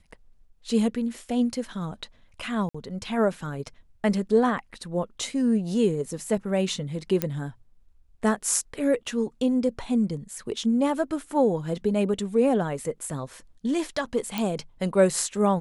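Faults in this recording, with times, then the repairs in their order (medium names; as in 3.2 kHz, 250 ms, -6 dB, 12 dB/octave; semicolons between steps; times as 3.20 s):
2.69–2.75 s: dropout 55 ms
7.22 s: pop -9 dBFS
14.38 s: pop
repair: de-click; interpolate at 2.69 s, 55 ms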